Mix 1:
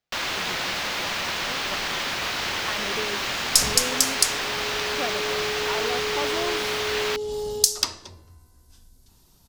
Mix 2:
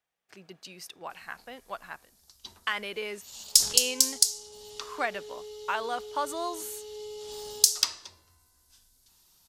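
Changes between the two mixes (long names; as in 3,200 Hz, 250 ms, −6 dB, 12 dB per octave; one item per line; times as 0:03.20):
first sound: muted
second sound −9.0 dB
master: add tilt shelving filter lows −8 dB, about 700 Hz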